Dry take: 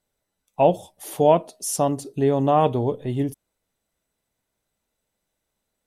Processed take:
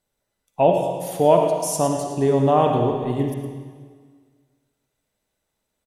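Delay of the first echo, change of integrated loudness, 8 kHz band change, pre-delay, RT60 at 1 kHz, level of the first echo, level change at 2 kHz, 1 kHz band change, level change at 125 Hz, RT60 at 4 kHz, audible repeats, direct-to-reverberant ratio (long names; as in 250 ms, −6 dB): 111 ms, +1.5 dB, +1.0 dB, 39 ms, 1.7 s, −11.5 dB, +2.0 dB, +1.5 dB, +2.0 dB, 1.6 s, 1, 2.0 dB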